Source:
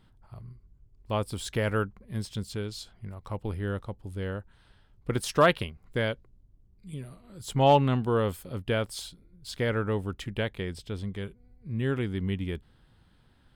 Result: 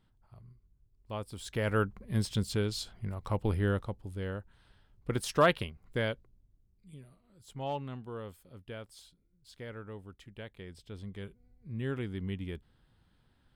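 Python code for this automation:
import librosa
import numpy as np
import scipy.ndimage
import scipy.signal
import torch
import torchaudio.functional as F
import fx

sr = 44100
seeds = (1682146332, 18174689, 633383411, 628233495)

y = fx.gain(x, sr, db=fx.line((1.32, -9.5), (1.99, 3.0), (3.63, 3.0), (4.14, -3.5), (6.12, -3.5), (7.43, -16.0), (10.34, -16.0), (11.26, -6.5)))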